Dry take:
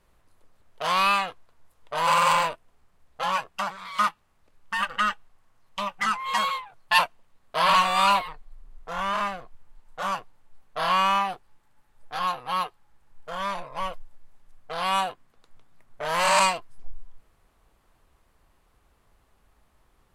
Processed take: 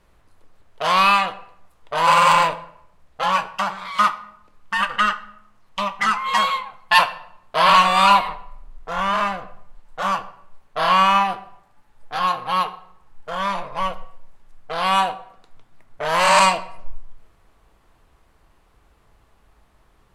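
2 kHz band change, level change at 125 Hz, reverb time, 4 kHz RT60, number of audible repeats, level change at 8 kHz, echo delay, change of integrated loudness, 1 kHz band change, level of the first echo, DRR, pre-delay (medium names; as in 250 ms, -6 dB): +6.0 dB, +7.0 dB, 0.75 s, 0.50 s, no echo, +3.0 dB, no echo, +6.0 dB, +6.5 dB, no echo, 10.5 dB, 3 ms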